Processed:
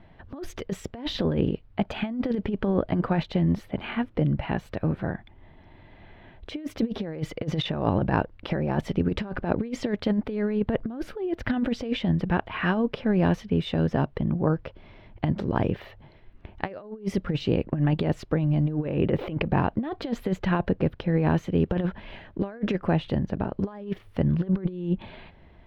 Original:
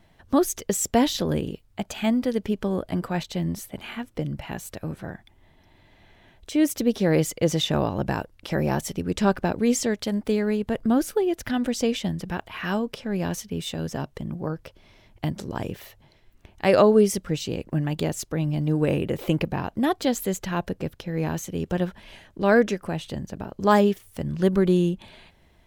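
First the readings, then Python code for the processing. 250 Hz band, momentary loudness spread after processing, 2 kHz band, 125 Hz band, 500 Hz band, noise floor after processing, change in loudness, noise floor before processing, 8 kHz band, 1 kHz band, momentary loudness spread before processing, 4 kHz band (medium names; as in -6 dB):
-1.5 dB, 9 LU, -2.5 dB, +2.0 dB, -5.0 dB, -52 dBFS, -2.0 dB, -58 dBFS, under -15 dB, -3.5 dB, 13 LU, -4.5 dB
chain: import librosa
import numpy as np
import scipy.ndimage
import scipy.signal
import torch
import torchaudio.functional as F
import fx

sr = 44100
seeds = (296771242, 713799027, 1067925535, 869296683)

y = fx.over_compress(x, sr, threshold_db=-26.0, ratio=-0.5)
y = fx.air_absorb(y, sr, metres=370.0)
y = y * 10.0 ** (3.0 / 20.0)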